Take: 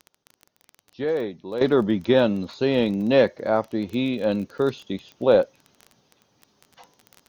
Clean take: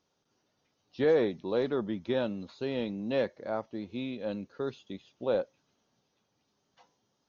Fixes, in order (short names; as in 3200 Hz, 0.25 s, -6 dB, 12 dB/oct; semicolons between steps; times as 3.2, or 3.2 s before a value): de-click; gain 0 dB, from 1.61 s -12 dB